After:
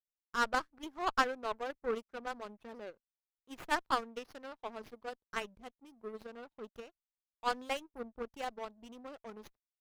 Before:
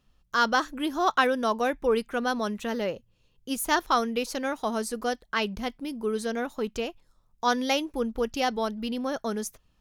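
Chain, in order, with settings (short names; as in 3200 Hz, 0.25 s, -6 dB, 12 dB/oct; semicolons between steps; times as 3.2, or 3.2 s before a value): formant sharpening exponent 1.5; power-law curve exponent 2; running maximum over 5 samples; gain -2 dB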